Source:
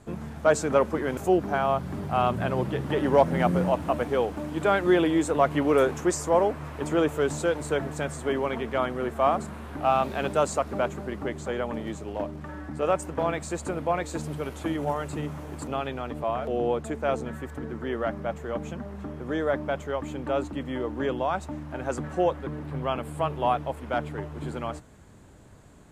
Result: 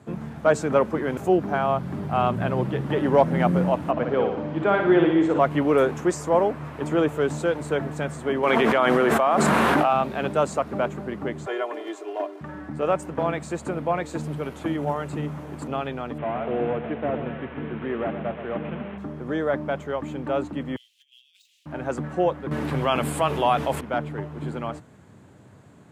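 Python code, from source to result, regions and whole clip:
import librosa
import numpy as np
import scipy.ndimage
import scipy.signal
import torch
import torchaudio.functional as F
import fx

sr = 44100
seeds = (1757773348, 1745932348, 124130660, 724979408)

y = fx.chain(x, sr, fx.air_absorb(metres=150.0),
    fx.room_flutter(wall_m=10.1, rt60_s=0.69), at=(3.91, 5.39))
y = fx.chain(y, sr, fx.highpass(hz=520.0, slope=6),
    fx.env_flatten(amount_pct=100), at=(8.43, 9.93))
y = fx.chain(y, sr, fx.steep_highpass(hz=350.0, slope=36),
    fx.comb(ms=2.9, depth=0.8), at=(11.46, 12.41))
y = fx.chain(y, sr, fx.delta_mod(bps=16000, step_db=-36.5),
    fx.echo_feedback(ms=124, feedback_pct=58, wet_db=-10), at=(16.18, 18.98))
y = fx.chain(y, sr, fx.median_filter(points=5),
    fx.steep_highpass(hz=2900.0, slope=48),
    fx.over_compress(threshold_db=-56.0, ratio=-0.5), at=(20.76, 21.66))
y = fx.chain(y, sr, fx.high_shelf(hz=2400.0, db=11.5),
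    fx.hum_notches(base_hz=50, count=9),
    fx.env_flatten(amount_pct=50), at=(22.51, 23.81))
y = scipy.signal.sosfilt(scipy.signal.butter(4, 100.0, 'highpass', fs=sr, output='sos'), y)
y = fx.bass_treble(y, sr, bass_db=3, treble_db=-6)
y = y * librosa.db_to_amplitude(1.5)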